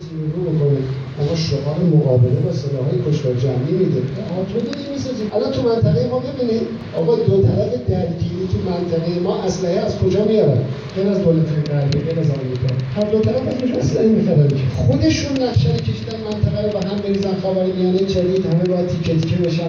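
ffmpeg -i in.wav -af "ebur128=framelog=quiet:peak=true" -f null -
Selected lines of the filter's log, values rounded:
Integrated loudness:
  I:         -18.2 LUFS
  Threshold: -28.2 LUFS
Loudness range:
  LRA:         2.3 LU
  Threshold: -38.2 LUFS
  LRA low:   -19.3 LUFS
  LRA high:  -17.0 LUFS
True peak:
  Peak:       -4.0 dBFS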